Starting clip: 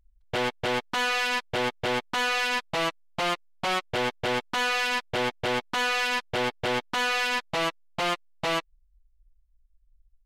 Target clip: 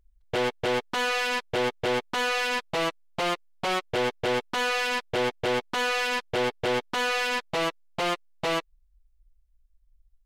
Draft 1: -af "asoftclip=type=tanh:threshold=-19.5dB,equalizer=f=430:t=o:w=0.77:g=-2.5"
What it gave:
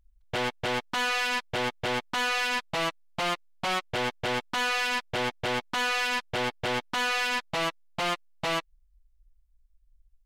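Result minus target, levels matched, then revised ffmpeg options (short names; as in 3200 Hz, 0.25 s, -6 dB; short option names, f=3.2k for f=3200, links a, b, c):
500 Hz band -4.5 dB
-af "asoftclip=type=tanh:threshold=-19.5dB,equalizer=f=430:t=o:w=0.77:g=6"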